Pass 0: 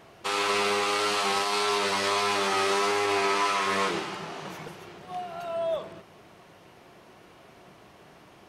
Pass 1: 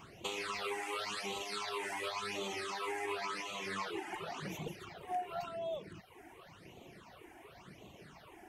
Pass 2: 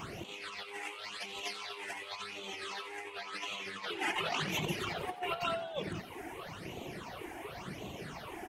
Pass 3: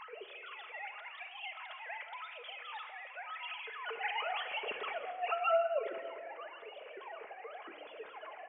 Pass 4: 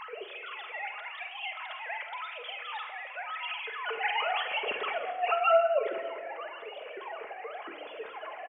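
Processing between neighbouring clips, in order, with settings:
reverb removal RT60 0.74 s; compressor 6:1, threshold -36 dBFS, peak gain reduction 12.5 dB; phaser stages 8, 0.92 Hz, lowest notch 150–1600 Hz; gain +2 dB
dynamic EQ 2900 Hz, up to +7 dB, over -56 dBFS, Q 0.95; negative-ratio compressor -43 dBFS, ratio -0.5; frequency-shifting echo 88 ms, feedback 53%, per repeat +72 Hz, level -14.5 dB; gain +5 dB
sine-wave speech; on a send at -5.5 dB: reverb RT60 1.9 s, pre-delay 5 ms; on the sum: gain -1 dB
doubler 47 ms -11.5 dB; gain +6.5 dB

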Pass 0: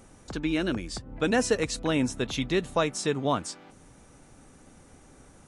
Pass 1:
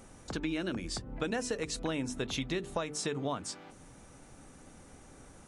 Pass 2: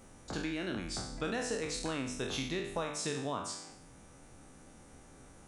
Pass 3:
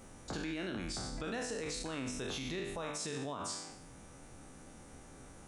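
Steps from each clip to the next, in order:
notches 50/100/150/200/250/300/350/400/450 Hz; compressor 6:1, threshold -31 dBFS, peak gain reduction 11.5 dB
spectral trails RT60 0.71 s; gain -4 dB
limiter -32.5 dBFS, peak gain reduction 10 dB; gain +2 dB

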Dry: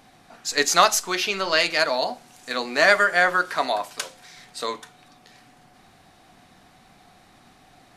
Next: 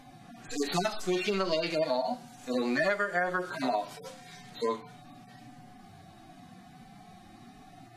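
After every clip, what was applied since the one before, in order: median-filter separation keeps harmonic; low shelf 410 Hz +9 dB; compressor 8:1, threshold -25 dBFS, peak gain reduction 14 dB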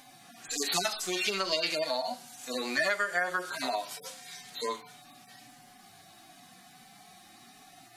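tilt +3.5 dB/oct; gain -1 dB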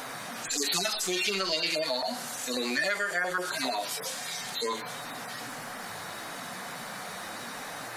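LFO notch saw down 7.4 Hz 500–1600 Hz; band noise 450–1900 Hz -55 dBFS; fast leveller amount 50%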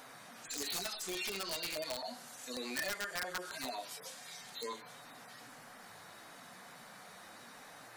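wrapped overs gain 20 dB; upward expander 1.5:1, over -38 dBFS; gain -8.5 dB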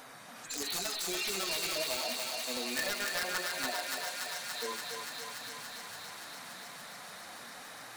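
thinning echo 0.287 s, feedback 84%, high-pass 490 Hz, level -3 dB; gain +2.5 dB

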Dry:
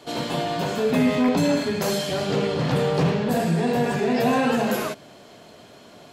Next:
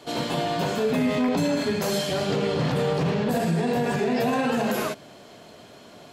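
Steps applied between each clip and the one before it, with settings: limiter -15.5 dBFS, peak gain reduction 5 dB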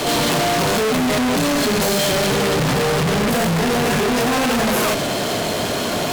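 fuzz box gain 51 dB, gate -53 dBFS; gain -4 dB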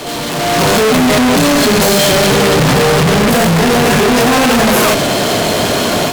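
AGC gain up to 12 dB; gain -3 dB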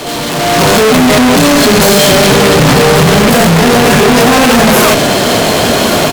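echo 1.138 s -12 dB; gain +3.5 dB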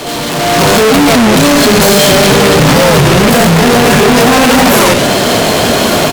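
record warp 33 1/3 rpm, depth 250 cents

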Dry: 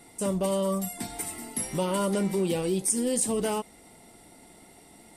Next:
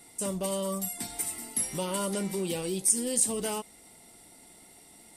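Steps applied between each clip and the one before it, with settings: high shelf 2600 Hz +8.5 dB; gain -5.5 dB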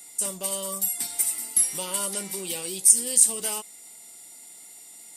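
tilt +3 dB/oct; whine 7100 Hz -50 dBFS; gain -1 dB

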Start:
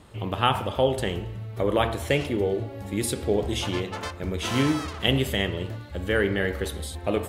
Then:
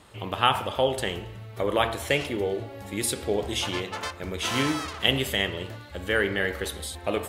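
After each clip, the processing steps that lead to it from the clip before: low shelf 470 Hz -9 dB; gain +2.5 dB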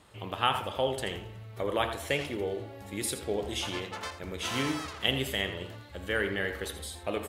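echo 82 ms -11.5 dB; gain -5.5 dB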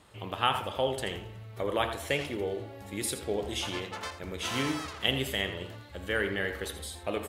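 nothing audible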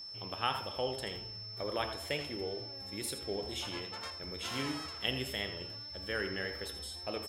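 wow and flutter 57 cents; whine 5300 Hz -37 dBFS; gain -6.5 dB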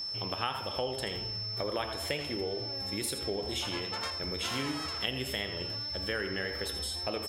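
compressor 3:1, threshold -41 dBFS, peak gain reduction 11 dB; gain +9 dB

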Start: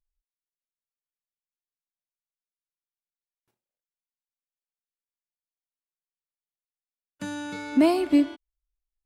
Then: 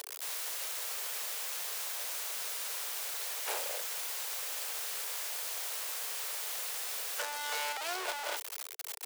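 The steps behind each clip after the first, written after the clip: infinite clipping; steep high-pass 420 Hz 72 dB/oct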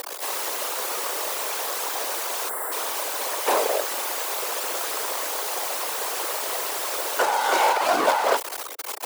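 spectral gain 2.49–2.72, 2100–7300 Hz -18 dB; graphic EQ 250/500/1000 Hz +7/+10/+9 dB; whisperiser; gain +8 dB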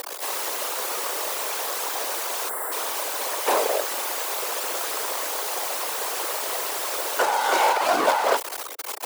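nothing audible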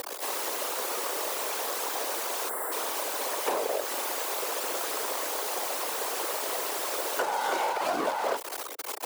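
HPF 54 Hz; low shelf 360 Hz +9 dB; compressor 6:1, threshold -21 dBFS, peak gain reduction 8.5 dB; gain -4 dB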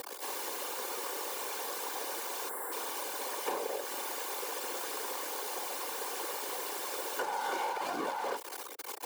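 notch comb 650 Hz; gain -5 dB

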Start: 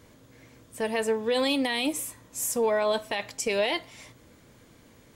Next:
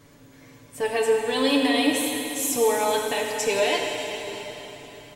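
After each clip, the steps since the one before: comb 7 ms, depth 75%; plate-style reverb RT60 3.9 s, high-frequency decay 1×, DRR 0 dB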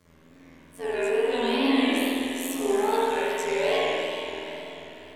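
robotiser 84.8 Hz; wow and flutter 140 cents; spring tank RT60 1.5 s, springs 48 ms, chirp 75 ms, DRR -7.5 dB; gain -7.5 dB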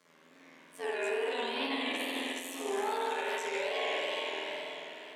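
weighting filter A; limiter -23.5 dBFS, peak gain reduction 10.5 dB; HPF 110 Hz 24 dB/oct; gain -1 dB

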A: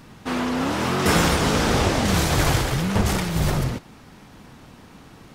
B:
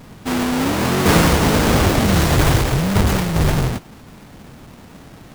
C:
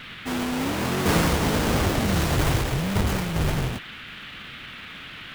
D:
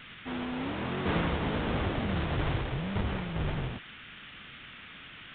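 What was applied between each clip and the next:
half-waves squared off
band noise 1200–3500 Hz -33 dBFS; gain -7.5 dB
downsampling 8000 Hz; gain -8 dB

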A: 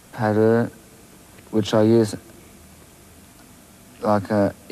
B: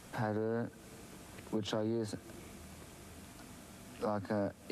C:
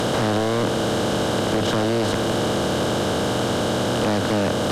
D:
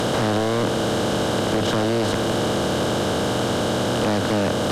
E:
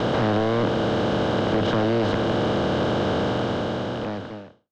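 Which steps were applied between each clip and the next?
high shelf 11000 Hz -7.5 dB; limiter -11 dBFS, peak gain reduction 4.5 dB; compressor 3:1, threshold -31 dBFS, peak gain reduction 11.5 dB; gain -4.5 dB
per-bin compression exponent 0.2; sine folder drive 8 dB, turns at -16 dBFS
nothing audible
ending faded out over 1.52 s; air absorption 200 m; expander -30 dBFS

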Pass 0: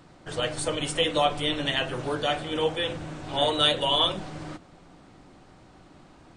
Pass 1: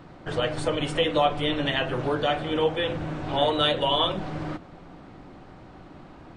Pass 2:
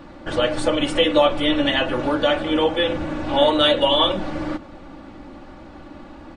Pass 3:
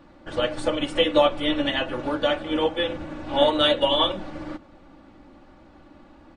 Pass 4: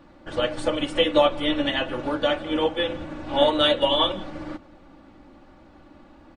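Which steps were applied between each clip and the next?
high shelf 4200 Hz -9 dB; in parallel at +1 dB: compressor, threshold -33 dBFS, peak gain reduction 14 dB; on the sum: bell 8800 Hz -7 dB 1.4 oct
comb 3.5 ms, depth 64%; gain +4.5 dB
upward expander 1.5:1, over -29 dBFS; gain -1.5 dB
echo 0.169 s -24 dB

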